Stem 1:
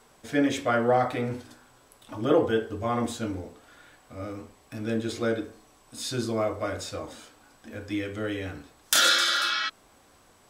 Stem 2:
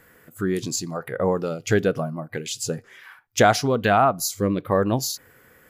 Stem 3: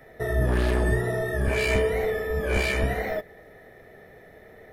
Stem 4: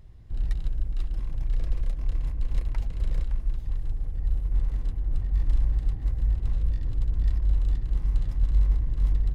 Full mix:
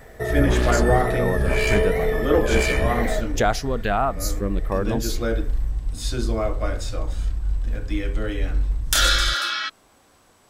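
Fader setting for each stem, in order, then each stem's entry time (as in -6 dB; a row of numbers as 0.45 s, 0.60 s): +1.5 dB, -4.5 dB, +2.5 dB, -1.0 dB; 0.00 s, 0.00 s, 0.00 s, 0.00 s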